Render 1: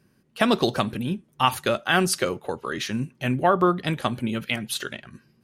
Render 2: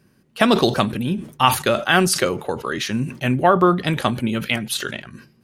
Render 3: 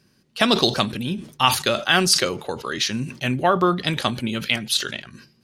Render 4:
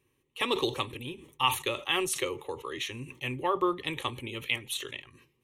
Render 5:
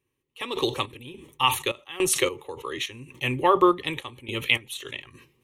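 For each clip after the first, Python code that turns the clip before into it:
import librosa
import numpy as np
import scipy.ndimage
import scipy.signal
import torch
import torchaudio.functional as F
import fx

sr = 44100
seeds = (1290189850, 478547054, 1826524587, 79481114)

y1 = fx.sustainer(x, sr, db_per_s=130.0)
y1 = F.gain(torch.from_numpy(y1), 4.5).numpy()
y2 = fx.peak_eq(y1, sr, hz=4700.0, db=10.5, octaves=1.5)
y2 = F.gain(torch.from_numpy(y2), -4.0).numpy()
y3 = fx.fixed_phaser(y2, sr, hz=1000.0, stages=8)
y3 = F.gain(torch.from_numpy(y3), -6.5).numpy()
y4 = fx.tremolo_random(y3, sr, seeds[0], hz=3.5, depth_pct=90)
y4 = F.gain(torch.from_numpy(y4), 9.0).numpy()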